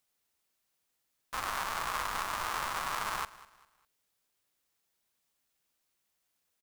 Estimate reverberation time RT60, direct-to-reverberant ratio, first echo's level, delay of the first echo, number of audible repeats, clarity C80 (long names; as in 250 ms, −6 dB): no reverb audible, no reverb audible, −19.0 dB, 200 ms, 2, no reverb audible